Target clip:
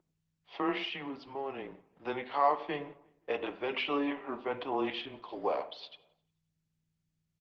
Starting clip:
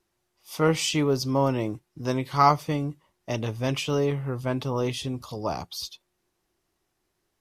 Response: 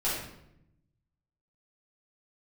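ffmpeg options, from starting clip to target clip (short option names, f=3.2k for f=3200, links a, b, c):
-filter_complex "[0:a]asplit=3[a][b][c];[a]afade=t=out:st=3.67:d=0.02[d];[b]aecho=1:1:5.4:0.55,afade=t=in:st=3.67:d=0.02,afade=t=out:st=4.47:d=0.02[e];[c]afade=t=in:st=4.47:d=0.02[f];[d][e][f]amix=inputs=3:normalize=0,alimiter=limit=-17.5dB:level=0:latency=1:release=22,asplit=3[g][h][i];[g]afade=t=out:st=0.77:d=0.02[j];[h]acompressor=threshold=-29dB:ratio=6,afade=t=in:st=0.77:d=0.02,afade=t=out:st=2.05:d=0.02[k];[i]afade=t=in:st=2.05:d=0.02[l];[j][k][l]amix=inputs=3:normalize=0,aeval=exprs='sgn(val(0))*max(abs(val(0))-0.00158,0)':c=same,aeval=exprs='val(0)+0.00447*(sin(2*PI*60*n/s)+sin(2*PI*2*60*n/s)/2+sin(2*PI*3*60*n/s)/3+sin(2*PI*4*60*n/s)/4+sin(2*PI*5*60*n/s)/5)':c=same,asplit=2[m][n];[n]adelay=176,lowpass=f=2.6k:p=1,volume=-23dB,asplit=2[o][p];[p]adelay=176,lowpass=f=2.6k:p=1,volume=0.43,asplit=2[q][r];[r]adelay=176,lowpass=f=2.6k:p=1,volume=0.43[s];[m][o][q][s]amix=inputs=4:normalize=0,asplit=2[t][u];[1:a]atrim=start_sample=2205,atrim=end_sample=6174,lowpass=2.5k[v];[u][v]afir=irnorm=-1:irlink=0,volume=-16dB[w];[t][w]amix=inputs=2:normalize=0,highpass=f=530:t=q:w=0.5412,highpass=f=530:t=q:w=1.307,lowpass=f=3.6k:t=q:w=0.5176,lowpass=f=3.6k:t=q:w=0.7071,lowpass=f=3.6k:t=q:w=1.932,afreqshift=-140" -ar 48000 -c:a libopus -b:a 16k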